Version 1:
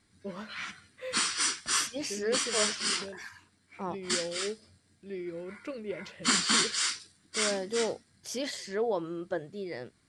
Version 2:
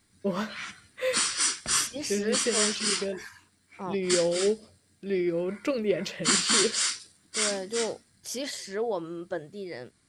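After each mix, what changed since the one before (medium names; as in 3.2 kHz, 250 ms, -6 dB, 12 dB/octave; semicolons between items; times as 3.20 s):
first voice +11.0 dB; master: add treble shelf 9.2 kHz +11 dB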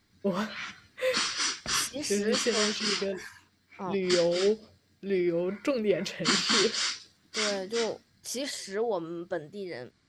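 background: add low-pass 6 kHz 24 dB/octave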